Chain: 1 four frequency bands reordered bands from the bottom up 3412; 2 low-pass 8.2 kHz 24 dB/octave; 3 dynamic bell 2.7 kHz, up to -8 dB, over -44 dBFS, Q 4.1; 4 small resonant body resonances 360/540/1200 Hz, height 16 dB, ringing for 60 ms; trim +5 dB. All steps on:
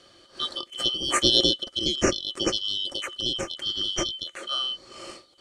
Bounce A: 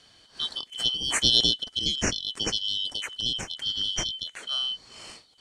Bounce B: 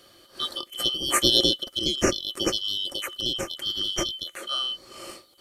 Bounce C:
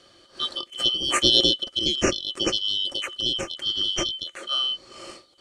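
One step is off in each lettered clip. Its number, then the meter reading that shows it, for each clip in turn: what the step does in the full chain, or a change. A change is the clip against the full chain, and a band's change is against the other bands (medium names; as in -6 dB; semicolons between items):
4, 500 Hz band -9.5 dB; 2, 8 kHz band +1.5 dB; 3, 4 kHz band +2.5 dB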